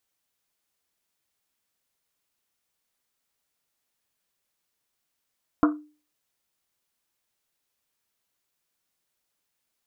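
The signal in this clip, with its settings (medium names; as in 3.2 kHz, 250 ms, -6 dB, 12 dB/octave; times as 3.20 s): Risset drum, pitch 300 Hz, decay 0.37 s, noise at 1.2 kHz, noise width 480 Hz, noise 20%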